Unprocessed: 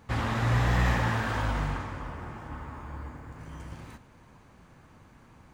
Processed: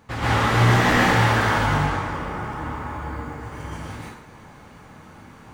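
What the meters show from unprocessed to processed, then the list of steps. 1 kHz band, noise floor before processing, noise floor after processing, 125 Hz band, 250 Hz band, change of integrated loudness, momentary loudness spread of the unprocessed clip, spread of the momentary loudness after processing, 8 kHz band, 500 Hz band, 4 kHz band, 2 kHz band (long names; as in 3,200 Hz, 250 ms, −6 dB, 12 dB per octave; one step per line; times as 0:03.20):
+11.5 dB, −56 dBFS, −46 dBFS, +7.0 dB, +9.5 dB, +9.5 dB, 19 LU, 18 LU, +12.0 dB, +11.5 dB, +12.5 dB, +11.5 dB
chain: wavefolder on the positive side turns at −24 dBFS
low-shelf EQ 110 Hz −7 dB
dense smooth reverb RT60 0.58 s, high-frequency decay 0.85×, pre-delay 110 ms, DRR −9 dB
level +2.5 dB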